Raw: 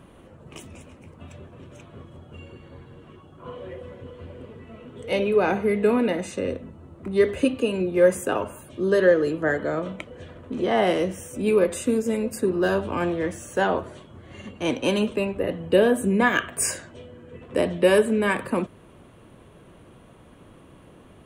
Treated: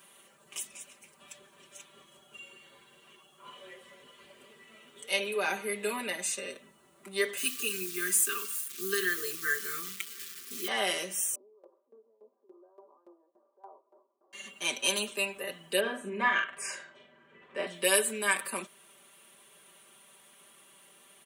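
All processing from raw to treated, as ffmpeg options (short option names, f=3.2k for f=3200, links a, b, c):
-filter_complex "[0:a]asettb=1/sr,asplit=3[a][b][c];[a]atrim=end=7.374[d];[b]atrim=start=7.37:end=10.68,asetpts=PTS-STARTPTS,afade=t=in:d=0.004:c=qsin,afade=t=out:st=3.306:d=0.004:c=qsin,acrusher=bits=8:dc=4:mix=0:aa=0.000001,asuperstop=centerf=710:order=20:qfactor=1.2[e];[c]atrim=start=10.676[f];[d][e]acrossfade=d=0.004:c1=hsin:c2=qsin[g];[g][f]acrossfade=d=0.004:c1=qsin:c2=hsin,asettb=1/sr,asplit=3[h][i][j];[h]atrim=end=11.354[k];[i]atrim=start=11.35:end=14.33,asetpts=PTS-STARTPTS,afade=t=in:d=0.004:c=qsin,afade=t=out:st=2.976:d=0.004:c=qsin,acompressor=threshold=-38dB:ratio=2.5:attack=3.2:release=140:knee=1:detection=peak,asuperpass=centerf=540:order=12:qfactor=0.67,aeval=exprs='val(0)*pow(10,-20*if(lt(mod(3.5*n/s,1),2*abs(3.5)/1000),1-mod(3.5*n/s,1)/(2*abs(3.5)/1000),(mod(3.5*n/s,1)-2*abs(3.5)/1000)/(1-2*abs(3.5)/1000))/20)':c=same[l];[j]atrim=start=14.326[m];[k][l]acrossfade=d=0.004:c1=hsin:c2=qsin[n];[n][m]acrossfade=d=0.004:c1=qsin:c2=hsin,asettb=1/sr,asplit=3[o][p][q];[o]atrim=end=15.804[r];[p]atrim=start=15.8:end=17.67,asetpts=PTS-STARTPTS,afade=t=in:d=0.004:c=qsin,afade=t=out:st=1.866:d=0.004:c=qsin,lowpass=2.1k,asplit=2[s][t];[t]adelay=44,volume=-5.5dB[u];[s][u]amix=inputs=2:normalize=0,atrim=end_sample=82467[v];[q]atrim=start=17.666[w];[r][v]acrossfade=d=0.004:c1=hsin:c2=qsin[x];[x][w]acrossfade=d=0.004:c1=qsin:c2=hsin,aderivative,aecho=1:1:5.1:0.94,volume=6.5dB"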